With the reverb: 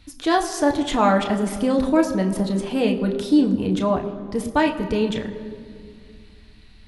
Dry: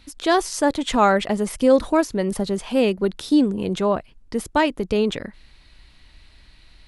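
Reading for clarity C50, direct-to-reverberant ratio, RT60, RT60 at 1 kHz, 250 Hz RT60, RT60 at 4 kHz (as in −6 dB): 10.5 dB, 2.0 dB, 2.2 s, 2.0 s, 3.0 s, 1.4 s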